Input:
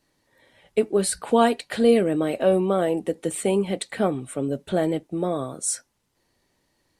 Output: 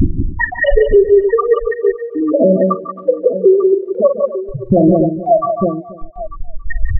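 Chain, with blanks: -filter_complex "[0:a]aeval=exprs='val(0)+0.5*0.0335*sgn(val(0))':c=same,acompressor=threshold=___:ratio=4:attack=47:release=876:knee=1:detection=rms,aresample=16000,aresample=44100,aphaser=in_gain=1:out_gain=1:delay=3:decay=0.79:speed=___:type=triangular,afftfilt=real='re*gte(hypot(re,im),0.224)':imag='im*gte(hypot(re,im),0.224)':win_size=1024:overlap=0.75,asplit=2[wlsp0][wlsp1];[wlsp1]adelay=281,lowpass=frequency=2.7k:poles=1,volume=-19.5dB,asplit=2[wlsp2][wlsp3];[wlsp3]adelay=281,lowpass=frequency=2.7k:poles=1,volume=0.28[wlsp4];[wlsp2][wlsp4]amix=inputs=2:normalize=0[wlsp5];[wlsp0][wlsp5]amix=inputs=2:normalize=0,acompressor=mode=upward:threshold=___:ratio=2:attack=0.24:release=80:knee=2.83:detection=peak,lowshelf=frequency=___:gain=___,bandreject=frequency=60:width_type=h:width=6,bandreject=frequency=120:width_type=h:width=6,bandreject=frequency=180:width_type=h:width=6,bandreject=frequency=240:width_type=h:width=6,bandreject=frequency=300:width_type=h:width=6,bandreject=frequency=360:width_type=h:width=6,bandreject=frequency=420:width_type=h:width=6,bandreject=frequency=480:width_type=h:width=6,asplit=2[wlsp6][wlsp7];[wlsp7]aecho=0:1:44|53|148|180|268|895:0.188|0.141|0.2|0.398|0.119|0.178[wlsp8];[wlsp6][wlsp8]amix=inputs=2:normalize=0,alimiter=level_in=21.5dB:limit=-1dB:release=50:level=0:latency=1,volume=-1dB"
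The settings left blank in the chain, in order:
-32dB, 0.42, -46dB, 390, 2.5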